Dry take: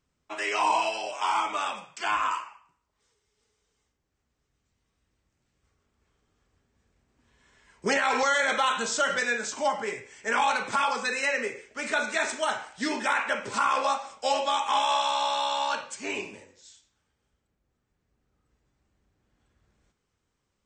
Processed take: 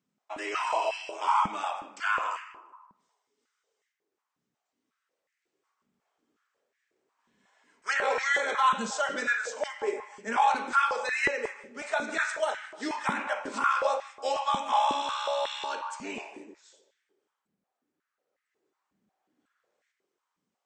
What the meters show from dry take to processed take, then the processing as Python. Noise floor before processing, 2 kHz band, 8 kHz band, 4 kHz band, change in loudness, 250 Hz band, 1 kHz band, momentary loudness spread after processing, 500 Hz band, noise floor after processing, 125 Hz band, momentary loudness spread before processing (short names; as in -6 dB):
-79 dBFS, -2.0 dB, -7.0 dB, -6.0 dB, -2.0 dB, -3.0 dB, -1.5 dB, 12 LU, -1.5 dB, -85 dBFS, n/a, 9 LU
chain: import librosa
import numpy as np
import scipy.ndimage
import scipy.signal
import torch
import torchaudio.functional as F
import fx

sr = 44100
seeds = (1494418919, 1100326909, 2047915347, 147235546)

y = fx.echo_filtered(x, sr, ms=154, feedback_pct=45, hz=1200.0, wet_db=-7.0)
y = fx.filter_held_highpass(y, sr, hz=5.5, low_hz=200.0, high_hz=1900.0)
y = y * 10.0 ** (-7.0 / 20.0)